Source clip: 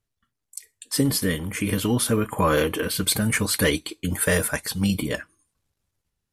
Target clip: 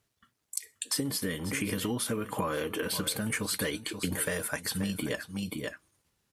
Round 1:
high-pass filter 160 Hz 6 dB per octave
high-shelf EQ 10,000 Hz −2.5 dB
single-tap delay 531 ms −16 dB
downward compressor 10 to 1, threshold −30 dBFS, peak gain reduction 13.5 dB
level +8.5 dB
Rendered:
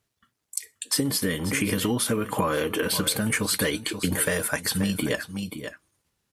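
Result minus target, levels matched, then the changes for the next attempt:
downward compressor: peak gain reduction −6.5 dB
change: downward compressor 10 to 1, threshold −37.5 dBFS, peak gain reduction 20.5 dB

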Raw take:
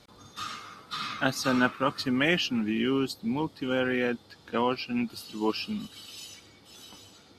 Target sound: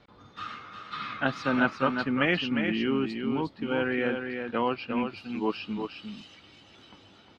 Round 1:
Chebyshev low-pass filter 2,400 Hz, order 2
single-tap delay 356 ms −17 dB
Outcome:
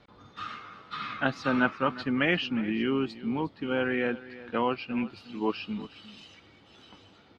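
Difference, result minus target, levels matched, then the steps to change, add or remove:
echo-to-direct −11 dB
change: single-tap delay 356 ms −6 dB

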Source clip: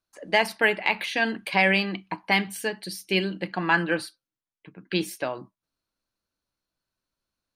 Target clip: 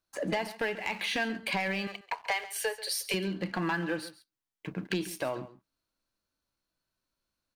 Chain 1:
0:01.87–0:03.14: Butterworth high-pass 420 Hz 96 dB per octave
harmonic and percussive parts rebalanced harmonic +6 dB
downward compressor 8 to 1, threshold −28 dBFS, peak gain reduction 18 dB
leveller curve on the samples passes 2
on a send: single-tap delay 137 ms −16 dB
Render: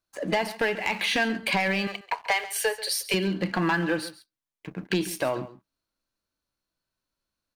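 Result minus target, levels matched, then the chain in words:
downward compressor: peak gain reduction −6.5 dB
0:01.87–0:03.14: Butterworth high-pass 420 Hz 96 dB per octave
harmonic and percussive parts rebalanced harmonic +6 dB
downward compressor 8 to 1, threshold −35.5 dBFS, peak gain reduction 24.5 dB
leveller curve on the samples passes 2
on a send: single-tap delay 137 ms −16 dB

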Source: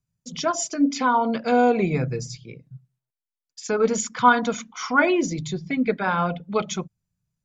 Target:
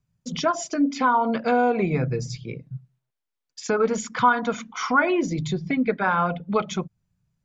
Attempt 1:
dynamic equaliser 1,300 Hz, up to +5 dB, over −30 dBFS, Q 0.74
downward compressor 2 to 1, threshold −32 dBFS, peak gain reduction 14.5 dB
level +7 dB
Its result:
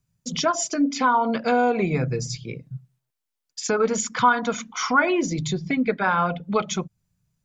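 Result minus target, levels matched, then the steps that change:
4,000 Hz band +3.5 dB
add after downward compressor: low-pass filter 3,100 Hz 6 dB per octave

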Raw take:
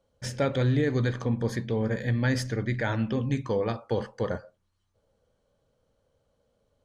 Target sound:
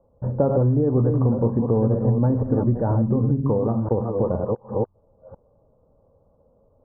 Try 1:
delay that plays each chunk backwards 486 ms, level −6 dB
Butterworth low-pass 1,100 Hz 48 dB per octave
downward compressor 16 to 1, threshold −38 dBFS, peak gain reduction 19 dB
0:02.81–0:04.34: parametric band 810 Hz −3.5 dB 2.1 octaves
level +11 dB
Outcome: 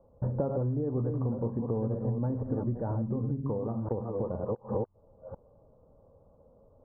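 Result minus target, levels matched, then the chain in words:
downward compressor: peak gain reduction +11 dB
delay that plays each chunk backwards 486 ms, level −6 dB
Butterworth low-pass 1,100 Hz 48 dB per octave
downward compressor 16 to 1, threshold −26 dBFS, peak gain reduction 7.5 dB
0:02.81–0:04.34: parametric band 810 Hz −3.5 dB 2.1 octaves
level +11 dB

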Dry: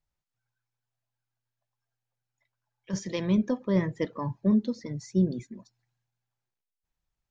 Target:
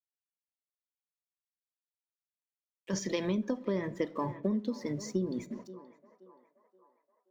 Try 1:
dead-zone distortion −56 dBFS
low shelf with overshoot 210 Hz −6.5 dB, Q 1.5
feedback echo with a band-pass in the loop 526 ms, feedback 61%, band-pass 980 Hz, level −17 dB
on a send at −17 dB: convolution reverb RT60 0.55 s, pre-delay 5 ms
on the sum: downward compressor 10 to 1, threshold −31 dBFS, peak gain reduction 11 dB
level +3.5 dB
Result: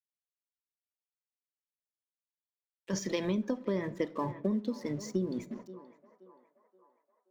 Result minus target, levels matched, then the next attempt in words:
dead-zone distortion: distortion +6 dB
dead-zone distortion −63 dBFS
low shelf with overshoot 210 Hz −6.5 dB, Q 1.5
feedback echo with a band-pass in the loop 526 ms, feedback 61%, band-pass 980 Hz, level −17 dB
on a send at −17 dB: convolution reverb RT60 0.55 s, pre-delay 5 ms
on the sum: downward compressor 10 to 1, threshold −31 dBFS, peak gain reduction 11 dB
level +3.5 dB

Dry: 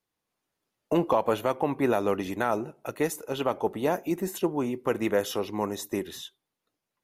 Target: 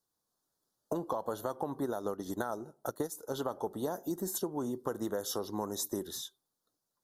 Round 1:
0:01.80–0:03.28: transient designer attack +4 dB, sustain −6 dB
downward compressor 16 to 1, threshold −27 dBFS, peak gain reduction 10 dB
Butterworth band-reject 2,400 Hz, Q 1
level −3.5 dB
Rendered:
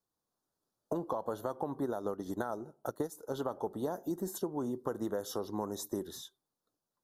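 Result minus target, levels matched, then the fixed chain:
4,000 Hz band −4.5 dB
0:01.80–0:03.28: transient designer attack +4 dB, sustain −6 dB
downward compressor 16 to 1, threshold −27 dBFS, peak gain reduction 10 dB
Butterworth band-reject 2,400 Hz, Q 1
high-shelf EQ 2,200 Hz +7 dB
level −3.5 dB

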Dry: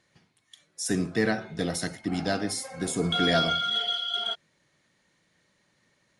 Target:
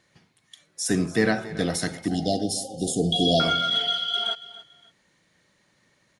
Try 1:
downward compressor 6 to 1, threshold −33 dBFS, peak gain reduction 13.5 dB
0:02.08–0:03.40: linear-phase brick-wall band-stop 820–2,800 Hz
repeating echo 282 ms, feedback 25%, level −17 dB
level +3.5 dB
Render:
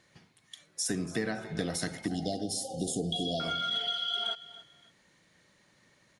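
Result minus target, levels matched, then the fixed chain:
downward compressor: peak gain reduction +13.5 dB
0:02.08–0:03.40: linear-phase brick-wall band-stop 820–2,800 Hz
repeating echo 282 ms, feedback 25%, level −17 dB
level +3.5 dB

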